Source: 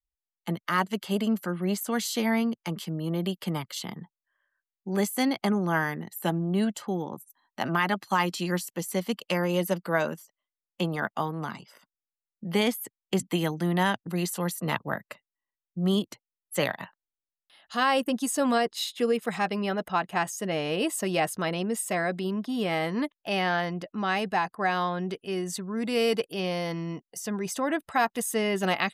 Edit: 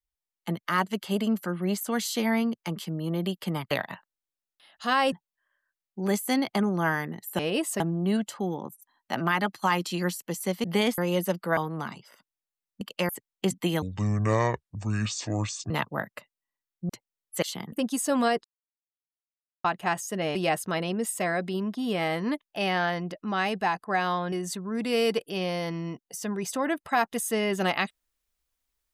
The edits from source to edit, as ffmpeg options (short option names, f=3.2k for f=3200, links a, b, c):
-filter_complex "[0:a]asplit=19[a][b][c][d][e][f][g][h][i][j][k][l][m][n][o][p][q][r][s];[a]atrim=end=3.712[t];[b]atrim=start=16.608:end=18.022[u];[c]atrim=start=4.008:end=6.282[v];[d]atrim=start=20.648:end=21.062[w];[e]atrim=start=6.278:end=9.122[x];[f]atrim=start=12.438:end=12.782[y];[g]atrim=start=9.398:end=9.992[z];[h]atrim=start=11.198:end=12.442[aa];[i]atrim=start=9.118:end=9.402[ab];[j]atrim=start=12.778:end=13.514[ac];[k]atrim=start=13.51:end=14.64,asetpts=PTS-STARTPTS,asetrate=26460,aresample=44100[ad];[l]atrim=start=14.636:end=15.832[ae];[m]atrim=start=16.078:end=16.612[af];[n]atrim=start=3.708:end=4.012[ag];[o]atrim=start=18.018:end=18.74,asetpts=PTS-STARTPTS,afade=t=out:st=0.718:d=0.004:c=hsin[ah];[p]atrim=start=18.74:end=19.94,asetpts=PTS-STARTPTS,volume=0[ai];[q]atrim=start=19.94:end=20.652,asetpts=PTS-STARTPTS,afade=t=in:d=0.004:c=hsin[aj];[r]atrim=start=21.058:end=25.032[ak];[s]atrim=start=25.348[al];[t][u]acrossfade=d=0.004:c1=hsin:c2=hsin[am];[am][v]acrossfade=d=0.004:c1=hsin:c2=hsin[an];[an][w]acrossfade=d=0.004:c1=hsin:c2=hsin[ao];[ao][x]acrossfade=d=0.004:c1=hsin:c2=hsin[ap];[ap][y]acrossfade=d=0.004:c1=hsin:c2=hsin[aq];[aq][z]acrossfade=d=0.004:c1=hsin:c2=hsin[ar];[ar][aa]acrossfade=d=0.004:c1=hsin:c2=hsin[as];[as][ab]acrossfade=d=0.004:c1=hsin:c2=hsin[at];[at][ac]acrossfade=d=0.004:c1=hsin:c2=hsin[au];[au][ad]acrossfade=d=0.004:c1=hsin:c2=hsin[av];[av][ae]acrossfade=d=0.004:c1=hsin:c2=hsin[aw];[aw][af]acrossfade=d=0.004:c1=hsin:c2=hsin[ax];[ax][ag]acrossfade=d=0.004:c1=hsin:c2=hsin[ay];[ah][ai][aj]concat=n=3:v=0:a=1[az];[ay][az]acrossfade=d=0.004:c1=hsin:c2=hsin[ba];[ba][ak]acrossfade=d=0.004:c1=hsin:c2=hsin[bb];[bb][al]acrossfade=d=0.004:c1=hsin:c2=hsin"